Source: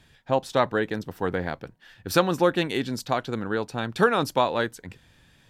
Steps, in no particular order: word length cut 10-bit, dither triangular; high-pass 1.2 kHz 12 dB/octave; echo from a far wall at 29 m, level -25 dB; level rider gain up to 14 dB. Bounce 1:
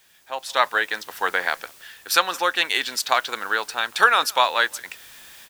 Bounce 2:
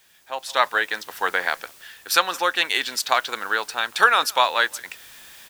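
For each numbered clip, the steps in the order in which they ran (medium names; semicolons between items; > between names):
high-pass > word length cut > level rider > echo from a far wall; high-pass > word length cut > echo from a far wall > level rider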